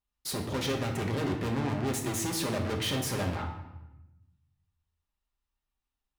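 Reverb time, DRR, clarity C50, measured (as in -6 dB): 0.95 s, 1.5 dB, 6.5 dB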